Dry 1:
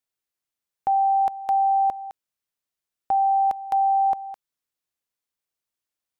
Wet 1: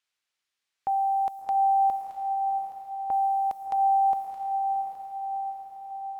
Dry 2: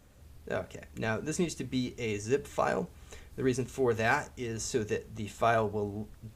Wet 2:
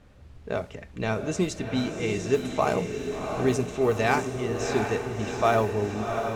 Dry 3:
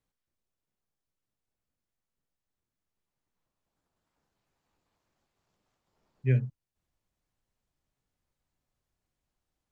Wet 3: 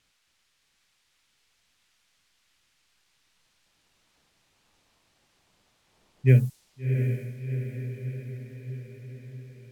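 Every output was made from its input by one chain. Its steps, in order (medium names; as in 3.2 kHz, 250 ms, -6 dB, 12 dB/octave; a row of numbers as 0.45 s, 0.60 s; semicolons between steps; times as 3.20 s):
dynamic bell 1.6 kHz, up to -7 dB, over -54 dBFS, Q 7.4; added noise violet -57 dBFS; level-controlled noise filter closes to 2.7 kHz, open at -23 dBFS; on a send: echo that smears into a reverb 708 ms, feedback 60%, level -6 dB; on the sum: normalise loudness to -27 LUFS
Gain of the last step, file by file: -5.0 dB, +5.0 dB, +7.5 dB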